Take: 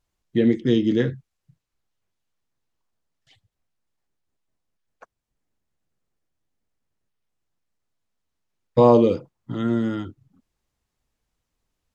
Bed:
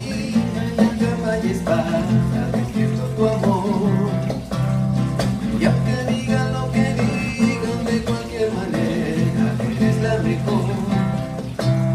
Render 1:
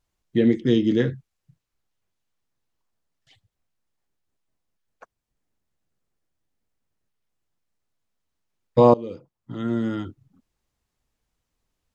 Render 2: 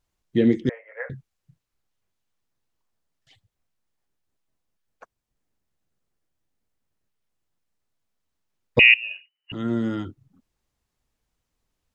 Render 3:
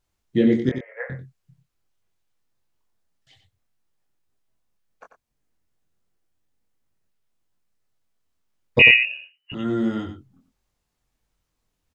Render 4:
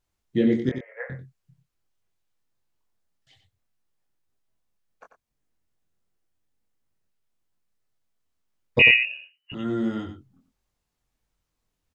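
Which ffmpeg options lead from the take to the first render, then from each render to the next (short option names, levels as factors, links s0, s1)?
-filter_complex "[0:a]asplit=2[s0][s1];[s0]atrim=end=8.94,asetpts=PTS-STARTPTS,afade=t=out:st=8.936:d=0.004:c=hsin:silence=0.0707946[s2];[s1]atrim=start=8.94,asetpts=PTS-STARTPTS,afade=t=in:d=1.09:silence=0.0707946[s3];[s2][s3]concat=n=2:v=0:a=1"
-filter_complex "[0:a]asettb=1/sr,asplit=3[s0][s1][s2];[s0]atrim=end=0.694[s3];[s1]atrim=start=0.69:end=1.1,asetpts=PTS-STARTPTS,afade=t=in:d=0.004:c=qsin,afade=t=out:st=0.406:d=0.004:c=qsin,asuperpass=centerf=1100:order=20:qfactor=0.62[s4];[s2]atrim=start=1.096[s5];[s3][s4]acrossfade=d=0.004:c1=hsin:c2=qsin[s6];[s6][s5]acrossfade=d=0.004:c1=qsin:c2=hsin,asettb=1/sr,asplit=3[s7][s8][s9];[s7]atrim=end=8.794[s10];[s8]atrim=start=8.79:end=9.52,asetpts=PTS-STARTPTS,afade=t=in:d=0.004:c=qsin,afade=t=out:st=0.726:d=0.004:c=qsin,lowpass=f=2600:t=q:w=0.5098,lowpass=f=2600:t=q:w=0.6013,lowpass=f=2600:t=q:w=0.9,lowpass=f=2600:t=q:w=2.563,afreqshift=-3000[s11];[s9]atrim=start=9.516[s12];[s10][s11]acrossfade=d=0.004:c1=hsin:c2=qsin[s13];[s13][s12]acrossfade=d=0.004:c1=qsin:c2=hsin"
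-filter_complex "[0:a]asplit=2[s0][s1];[s1]adelay=23,volume=0.562[s2];[s0][s2]amix=inputs=2:normalize=0,aecho=1:1:92:0.355"
-af "volume=0.708"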